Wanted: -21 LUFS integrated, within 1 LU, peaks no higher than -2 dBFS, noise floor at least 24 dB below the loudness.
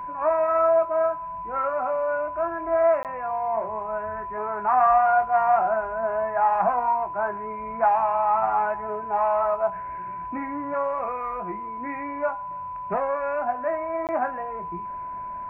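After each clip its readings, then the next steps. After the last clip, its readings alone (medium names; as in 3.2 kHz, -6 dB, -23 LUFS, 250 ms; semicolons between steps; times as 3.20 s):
dropouts 2; longest dropout 18 ms; steady tone 1 kHz; tone level -31 dBFS; loudness -25.0 LUFS; peak level -9.5 dBFS; loudness target -21.0 LUFS
-> interpolate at 3.03/14.07 s, 18 ms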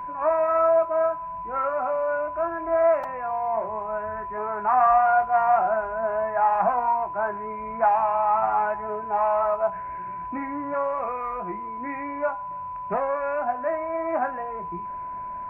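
dropouts 0; steady tone 1 kHz; tone level -31 dBFS
-> band-stop 1 kHz, Q 30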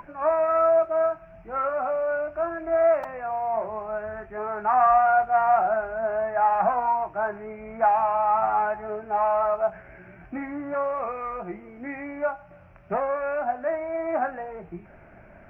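steady tone not found; loudness -24.5 LUFS; peak level -9.5 dBFS; loudness target -21.0 LUFS
-> trim +3.5 dB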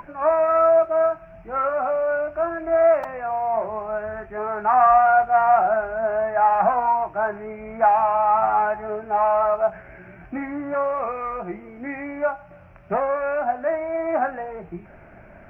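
loudness -21.0 LUFS; peak level -6.0 dBFS; noise floor -46 dBFS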